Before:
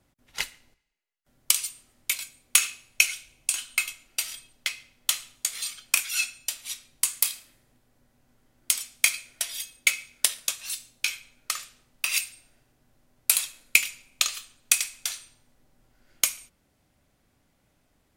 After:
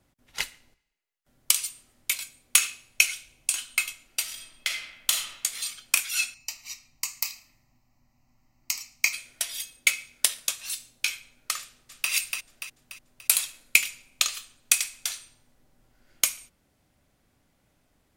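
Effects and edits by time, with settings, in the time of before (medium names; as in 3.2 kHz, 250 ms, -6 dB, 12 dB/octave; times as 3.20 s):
4.31–5.31 s: reverb throw, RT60 1 s, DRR 1.5 dB
6.34–9.13 s: static phaser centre 2.3 kHz, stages 8
11.60–12.11 s: echo throw 290 ms, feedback 50%, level -4 dB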